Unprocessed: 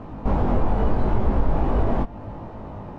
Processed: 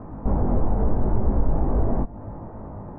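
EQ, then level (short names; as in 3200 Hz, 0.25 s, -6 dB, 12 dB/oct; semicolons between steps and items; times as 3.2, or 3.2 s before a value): LPF 1900 Hz 24 dB/oct; dynamic EQ 1500 Hz, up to -5 dB, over -42 dBFS, Q 0.8; air absorption 500 m; 0.0 dB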